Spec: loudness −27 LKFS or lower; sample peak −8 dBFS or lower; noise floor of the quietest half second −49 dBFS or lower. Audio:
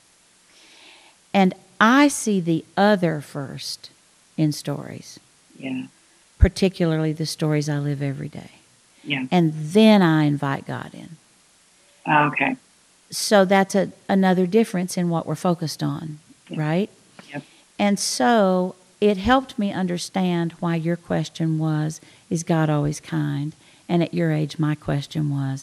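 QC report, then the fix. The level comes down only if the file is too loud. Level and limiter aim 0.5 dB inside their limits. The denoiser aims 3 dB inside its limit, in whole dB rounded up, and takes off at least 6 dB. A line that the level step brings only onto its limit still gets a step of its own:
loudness −21.5 LKFS: out of spec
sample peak −2.0 dBFS: out of spec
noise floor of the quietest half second −57 dBFS: in spec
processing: level −6 dB
brickwall limiter −8.5 dBFS

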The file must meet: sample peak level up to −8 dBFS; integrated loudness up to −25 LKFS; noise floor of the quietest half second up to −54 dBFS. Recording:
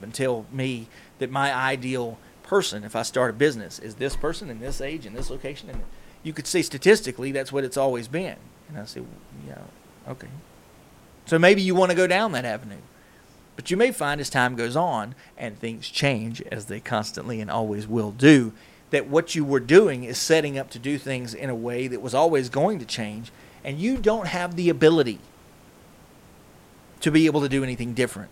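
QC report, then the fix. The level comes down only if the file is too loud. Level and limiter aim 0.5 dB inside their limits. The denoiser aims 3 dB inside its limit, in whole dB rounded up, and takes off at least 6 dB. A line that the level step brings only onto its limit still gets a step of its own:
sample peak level −3.5 dBFS: out of spec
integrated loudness −23.5 LKFS: out of spec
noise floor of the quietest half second −52 dBFS: out of spec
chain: broadband denoise 6 dB, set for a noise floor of −52 dBFS
level −2 dB
brickwall limiter −8.5 dBFS

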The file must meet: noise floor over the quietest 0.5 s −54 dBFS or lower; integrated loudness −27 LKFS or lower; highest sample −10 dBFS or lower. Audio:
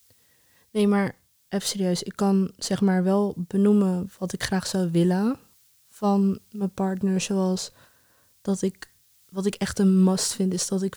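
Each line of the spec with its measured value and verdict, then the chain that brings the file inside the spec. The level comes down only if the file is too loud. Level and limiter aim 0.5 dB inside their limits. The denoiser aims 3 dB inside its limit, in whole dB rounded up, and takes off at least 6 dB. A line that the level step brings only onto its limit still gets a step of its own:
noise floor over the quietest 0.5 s −61 dBFS: in spec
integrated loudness −24.5 LKFS: out of spec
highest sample −6.5 dBFS: out of spec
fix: level −3 dB
brickwall limiter −10.5 dBFS

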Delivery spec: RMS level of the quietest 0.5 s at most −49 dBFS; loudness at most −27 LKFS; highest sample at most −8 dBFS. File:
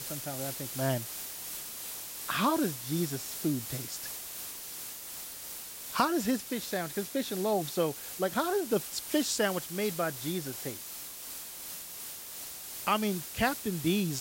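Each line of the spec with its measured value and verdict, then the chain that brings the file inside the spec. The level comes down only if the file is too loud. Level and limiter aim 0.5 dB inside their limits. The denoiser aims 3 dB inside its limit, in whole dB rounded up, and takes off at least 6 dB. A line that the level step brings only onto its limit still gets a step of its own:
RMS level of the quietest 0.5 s −43 dBFS: out of spec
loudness −33.0 LKFS: in spec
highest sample −11.5 dBFS: in spec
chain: broadband denoise 9 dB, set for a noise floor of −43 dBFS

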